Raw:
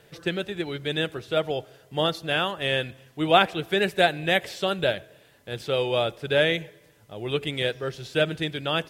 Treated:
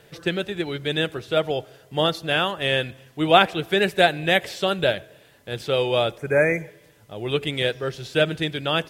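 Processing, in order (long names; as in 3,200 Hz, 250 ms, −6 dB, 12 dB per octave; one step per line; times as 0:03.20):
healed spectral selection 0:06.20–0:06.78, 2,500–5,500 Hz after
level +3 dB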